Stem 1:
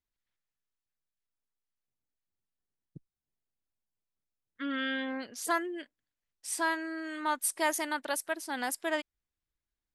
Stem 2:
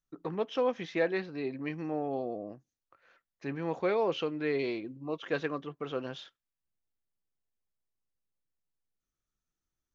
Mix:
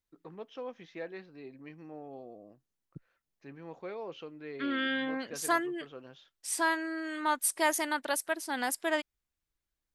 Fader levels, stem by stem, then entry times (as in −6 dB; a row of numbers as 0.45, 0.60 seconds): +1.5, −12.0 decibels; 0.00, 0.00 seconds